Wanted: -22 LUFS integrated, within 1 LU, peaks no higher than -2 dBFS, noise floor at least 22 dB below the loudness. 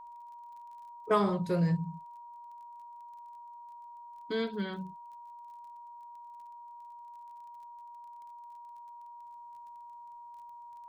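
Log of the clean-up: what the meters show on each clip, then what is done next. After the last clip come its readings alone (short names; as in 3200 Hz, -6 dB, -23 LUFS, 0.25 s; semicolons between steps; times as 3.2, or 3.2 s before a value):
ticks 25/s; steady tone 950 Hz; tone level -46 dBFS; loudness -32.5 LUFS; peak -15.0 dBFS; loudness target -22.0 LUFS
-> de-click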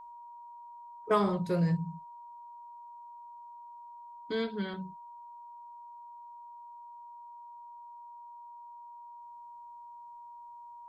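ticks 0/s; steady tone 950 Hz; tone level -46 dBFS
-> notch 950 Hz, Q 30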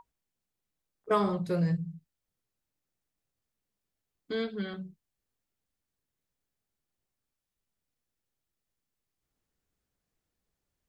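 steady tone none; loudness -31.5 LUFS; peak -15.0 dBFS; loudness target -22.0 LUFS
-> gain +9.5 dB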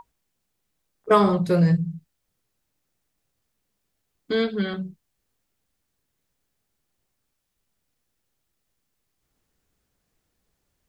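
loudness -22.0 LUFS; peak -5.5 dBFS; noise floor -77 dBFS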